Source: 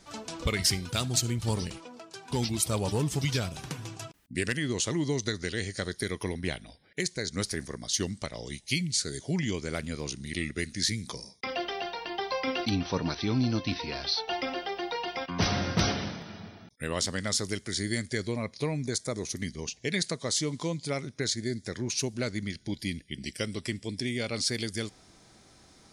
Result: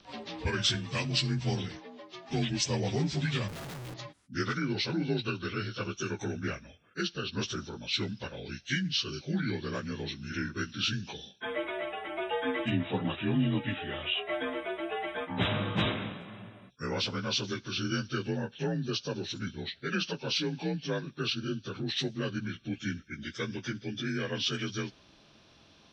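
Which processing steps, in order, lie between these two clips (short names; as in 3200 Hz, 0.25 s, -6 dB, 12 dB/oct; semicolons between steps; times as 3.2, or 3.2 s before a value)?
inharmonic rescaling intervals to 86%; 3.48–3.94 Schmitt trigger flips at -48.5 dBFS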